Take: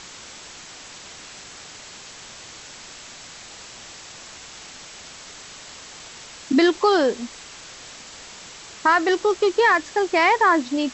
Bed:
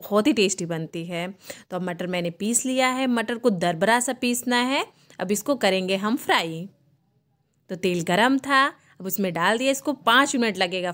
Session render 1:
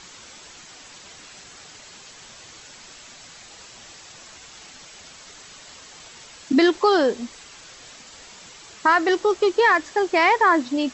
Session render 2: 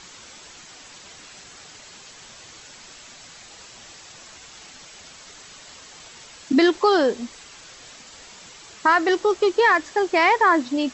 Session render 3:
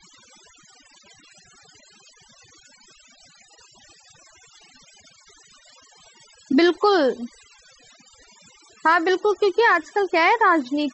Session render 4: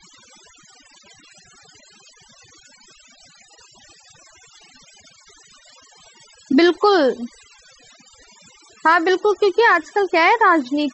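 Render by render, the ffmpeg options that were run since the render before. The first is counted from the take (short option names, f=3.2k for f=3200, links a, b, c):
-af "afftdn=nr=6:nf=-42"
-af anull
-af "afftfilt=real='re*gte(hypot(re,im),0.0126)':imag='im*gte(hypot(re,im),0.0126)':win_size=1024:overlap=0.75"
-af "volume=3dB"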